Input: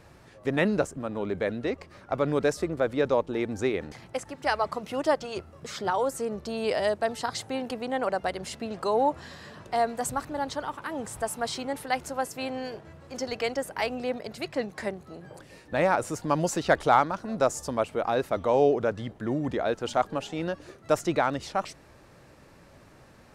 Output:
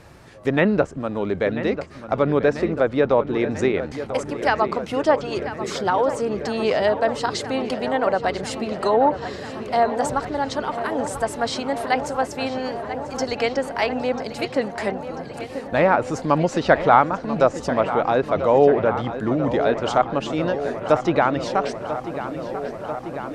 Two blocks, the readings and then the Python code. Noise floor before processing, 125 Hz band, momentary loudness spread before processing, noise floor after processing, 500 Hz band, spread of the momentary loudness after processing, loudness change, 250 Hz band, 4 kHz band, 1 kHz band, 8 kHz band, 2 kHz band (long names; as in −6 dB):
−54 dBFS, +7.5 dB, 11 LU, −36 dBFS, +7.5 dB, 10 LU, +6.5 dB, +7.5 dB, +5.5 dB, +7.0 dB, +1.0 dB, +6.5 dB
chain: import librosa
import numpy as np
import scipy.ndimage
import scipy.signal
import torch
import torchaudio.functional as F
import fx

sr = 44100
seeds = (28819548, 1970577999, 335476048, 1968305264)

y = fx.env_lowpass_down(x, sr, base_hz=2600.0, full_db=-20.5)
y = fx.echo_filtered(y, sr, ms=991, feedback_pct=82, hz=4100.0, wet_db=-11.5)
y = F.gain(torch.from_numpy(y), 6.5).numpy()